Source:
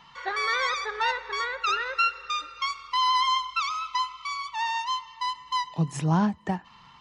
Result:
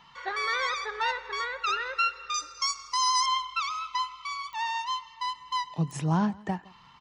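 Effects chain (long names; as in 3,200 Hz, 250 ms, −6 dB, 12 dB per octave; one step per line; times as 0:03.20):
0:02.34–0:03.26: high shelf with overshoot 4,400 Hz +10.5 dB, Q 3
slap from a distant wall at 28 metres, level −23 dB
digital clicks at 0:04.53/0:05.91, −29 dBFS
level −2.5 dB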